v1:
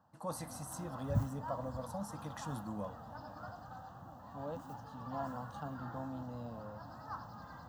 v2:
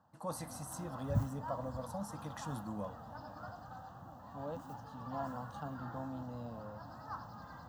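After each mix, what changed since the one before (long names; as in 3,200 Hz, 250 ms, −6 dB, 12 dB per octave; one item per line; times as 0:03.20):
nothing changed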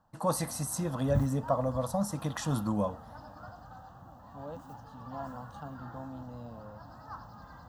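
first voice +11.5 dB
master: remove high-pass filter 81 Hz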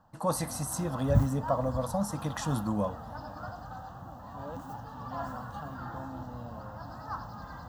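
background +6.5 dB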